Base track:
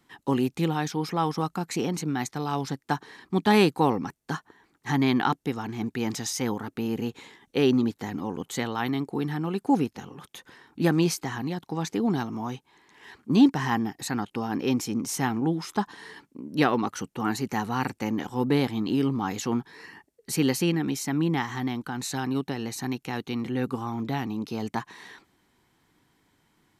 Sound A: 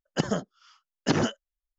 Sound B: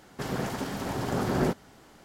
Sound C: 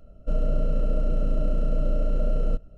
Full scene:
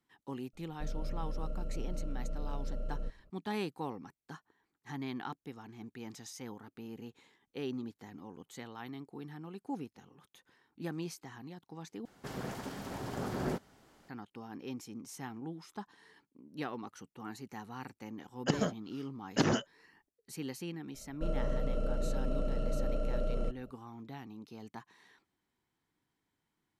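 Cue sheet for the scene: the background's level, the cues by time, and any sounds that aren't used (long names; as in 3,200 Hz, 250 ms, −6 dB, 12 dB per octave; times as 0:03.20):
base track −17 dB
0:00.53: mix in C −14.5 dB
0:12.05: overwrite with B −9 dB
0:18.30: mix in A −4.5 dB
0:20.94: mix in C −3 dB + low-shelf EQ 190 Hz −8.5 dB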